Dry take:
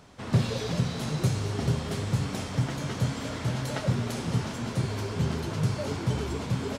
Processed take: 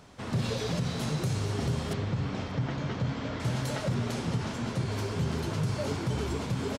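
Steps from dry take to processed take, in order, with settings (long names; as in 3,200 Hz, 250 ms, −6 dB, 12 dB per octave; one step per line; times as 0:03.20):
0:03.94–0:04.92: high-shelf EQ 10,000 Hz −9.5 dB
brickwall limiter −21 dBFS, peak gain reduction 8 dB
0:01.93–0:03.40: high-frequency loss of the air 160 metres
single-tap delay 584 ms −22.5 dB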